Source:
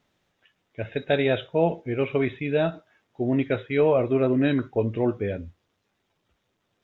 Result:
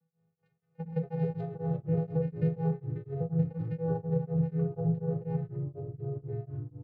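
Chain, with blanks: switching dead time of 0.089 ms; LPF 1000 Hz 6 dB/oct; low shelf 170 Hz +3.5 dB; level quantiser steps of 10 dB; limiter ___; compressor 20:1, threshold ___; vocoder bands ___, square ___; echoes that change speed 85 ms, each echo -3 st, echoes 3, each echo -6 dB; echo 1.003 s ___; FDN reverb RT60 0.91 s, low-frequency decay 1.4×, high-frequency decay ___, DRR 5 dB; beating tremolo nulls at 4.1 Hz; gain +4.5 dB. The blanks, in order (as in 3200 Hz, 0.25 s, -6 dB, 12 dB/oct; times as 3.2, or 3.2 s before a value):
-18 dBFS, -29 dBFS, 8, 164 Hz, -24 dB, 0.35×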